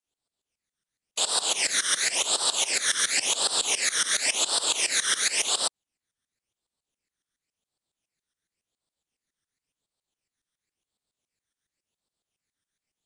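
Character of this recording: tremolo saw up 7.2 Hz, depth 95%; phasing stages 12, 0.93 Hz, lowest notch 800–2200 Hz; Nellymoser

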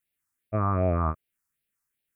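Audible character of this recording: phasing stages 4, 2.6 Hz, lowest notch 540–1100 Hz

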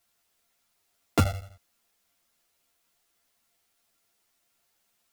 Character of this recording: a buzz of ramps at a fixed pitch in blocks of 64 samples; chopped level 12 Hz, duty 75%; a quantiser's noise floor 12-bit, dither triangular; a shimmering, thickened sound

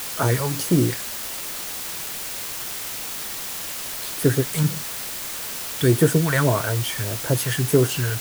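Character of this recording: phasing stages 2, 1.7 Hz, lowest notch 310–4400 Hz; a quantiser's noise floor 6-bit, dither triangular

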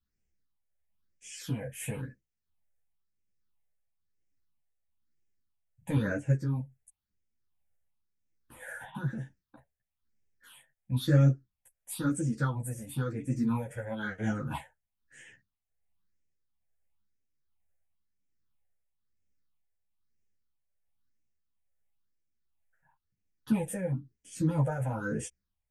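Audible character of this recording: phasing stages 6, 1 Hz, lowest notch 280–1100 Hz; tremolo triangle 1.2 Hz, depth 55%; a shimmering, thickened sound

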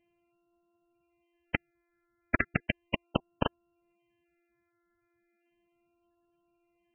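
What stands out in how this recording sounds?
a buzz of ramps at a fixed pitch in blocks of 128 samples; phasing stages 8, 0.36 Hz, lowest notch 800–2000 Hz; MP3

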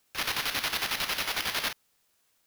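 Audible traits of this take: aliases and images of a low sample rate 8 kHz, jitter 0%; chopped level 11 Hz, depth 60%, duty 50%; a quantiser's noise floor 12-bit, dither triangular

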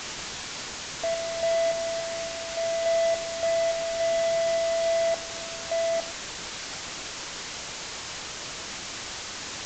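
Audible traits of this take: random-step tremolo, depth 90%; a quantiser's noise floor 6-bit, dither triangular; AAC

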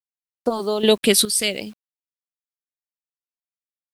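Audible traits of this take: random-step tremolo 2.4 Hz, depth 75%; phasing stages 2, 0.59 Hz, lowest notch 800–2600 Hz; a quantiser's noise floor 10-bit, dither none

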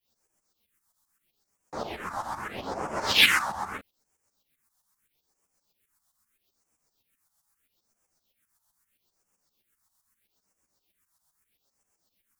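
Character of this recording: a quantiser's noise floor 12-bit, dither triangular; phasing stages 4, 0.78 Hz, lowest notch 400–3800 Hz; tremolo saw up 7.7 Hz, depth 80%; a shimmering, thickened sound

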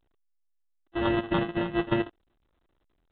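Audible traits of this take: a buzz of ramps at a fixed pitch in blocks of 128 samples; phasing stages 8, 3.5 Hz, lowest notch 770–2400 Hz; aliases and images of a low sample rate 2.3 kHz, jitter 0%; A-law

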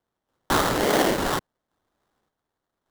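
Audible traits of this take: phasing stages 2, 1.3 Hz, lowest notch 540–2000 Hz; random-step tremolo; aliases and images of a low sample rate 2.5 kHz, jitter 20%

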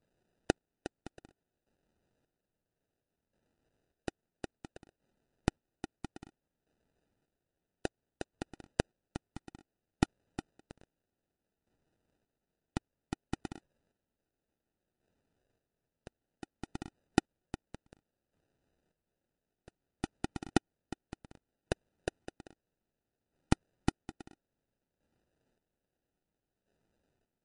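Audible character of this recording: phasing stages 8, 0.28 Hz, lowest notch 510–1100 Hz; aliases and images of a low sample rate 1.1 kHz, jitter 0%; chopped level 0.6 Hz, depth 60%, duty 35%; MP3

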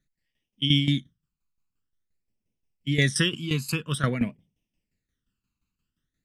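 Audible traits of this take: phasing stages 12, 0.49 Hz, lowest notch 580–1400 Hz; tremolo saw down 5.7 Hz, depth 75%

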